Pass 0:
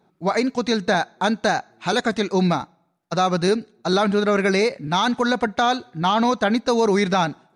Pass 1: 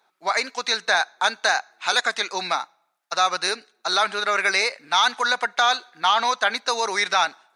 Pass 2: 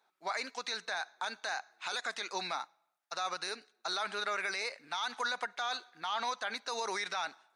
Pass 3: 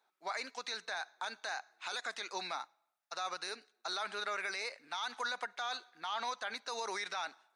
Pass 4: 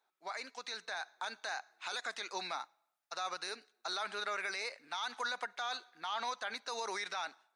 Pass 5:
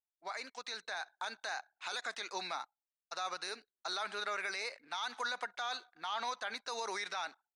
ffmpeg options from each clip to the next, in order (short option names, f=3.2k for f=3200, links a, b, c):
-af "highpass=1.1k,volume=5dB"
-af "alimiter=limit=-16dB:level=0:latency=1:release=49,volume=-9dB"
-af "highpass=190,volume=-3dB"
-af "dynaudnorm=f=560:g=3:m=3.5dB,volume=-3.5dB"
-af "anlmdn=0.0000251"